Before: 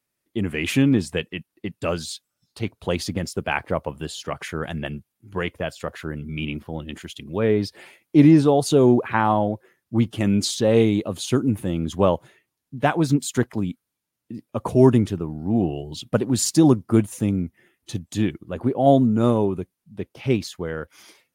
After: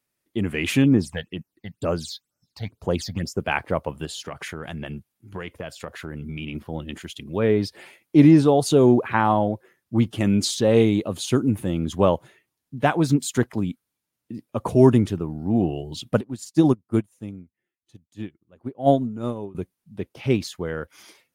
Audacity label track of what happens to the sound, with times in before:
0.840000	3.400000	all-pass phaser stages 8, 2.1 Hz, lowest notch 330–3,800 Hz
4.050000	6.550000	downward compressor, threshold −28 dBFS
16.210000	19.550000	expander for the loud parts 2.5 to 1, over −28 dBFS

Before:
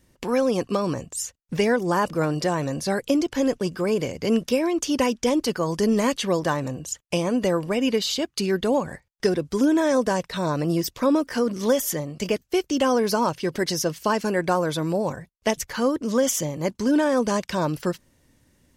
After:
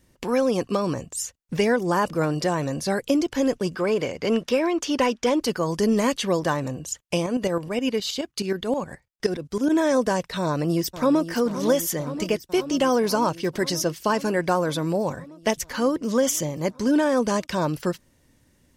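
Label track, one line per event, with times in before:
3.750000	5.410000	mid-hump overdrive drive 10 dB, tone 2,500 Hz, clips at −9.5 dBFS
7.240000	9.690000	shaped tremolo saw up 9.5 Hz, depth 55% → 80%
10.410000	11.290000	delay throw 520 ms, feedback 80%, level −12 dB

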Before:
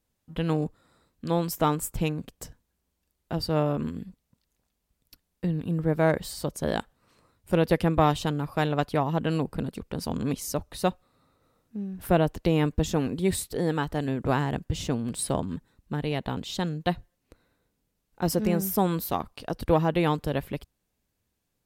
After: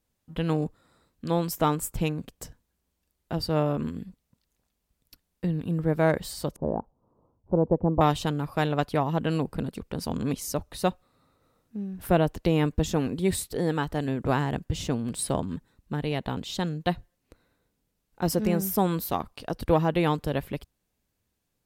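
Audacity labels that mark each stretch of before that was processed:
6.560000	8.010000	Chebyshev low-pass filter 960 Hz, order 4

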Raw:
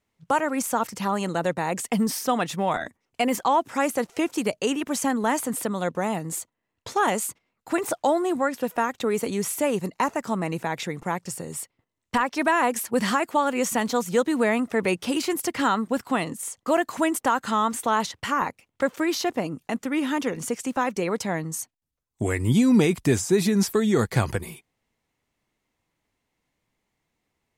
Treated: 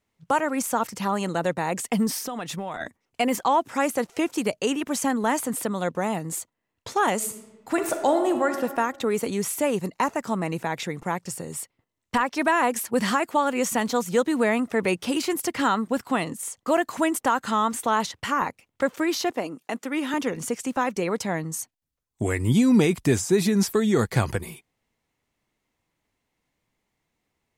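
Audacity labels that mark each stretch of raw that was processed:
2.230000	2.800000	downward compressor 10 to 1, threshold −27 dBFS
7.150000	8.550000	thrown reverb, RT60 1.4 s, DRR 6 dB
19.310000	20.140000	high-pass filter 280 Hz

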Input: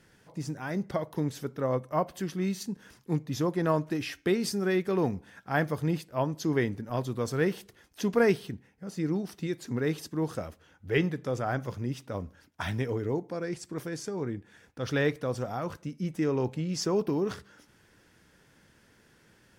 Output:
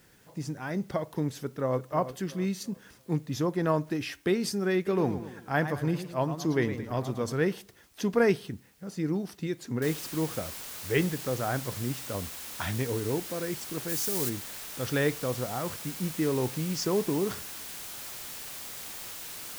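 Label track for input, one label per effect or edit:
1.390000	1.820000	delay throw 340 ms, feedback 35%, level −12 dB
4.750000	7.330000	feedback echo with a swinging delay time 111 ms, feedback 47%, depth 141 cents, level −10.5 dB
9.820000	9.820000	noise floor change −65 dB −41 dB
13.880000	14.280000	high-shelf EQ 6,300 Hz → 3,400 Hz +11 dB

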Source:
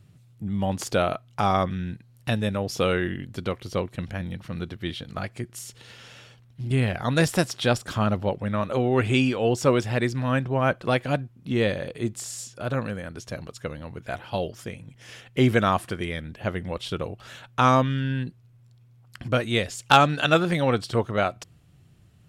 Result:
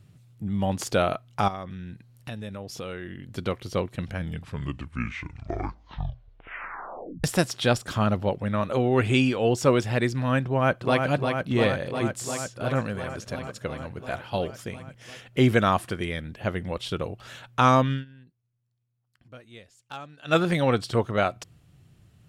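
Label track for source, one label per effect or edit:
1.480000	3.330000	downward compressor 2.5 to 1, threshold −38 dBFS
4.040000	4.040000	tape stop 3.20 s
10.460000	11.060000	delay throw 350 ms, feedback 80%, level −5 dB
12.410000	12.900000	delay throw 340 ms, feedback 70%, level −17 dB
17.930000	20.370000	duck −23 dB, fades 0.12 s

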